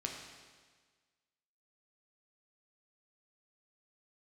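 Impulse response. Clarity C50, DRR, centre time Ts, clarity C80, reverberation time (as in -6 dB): 3.5 dB, 0.0 dB, 55 ms, 5.0 dB, 1.5 s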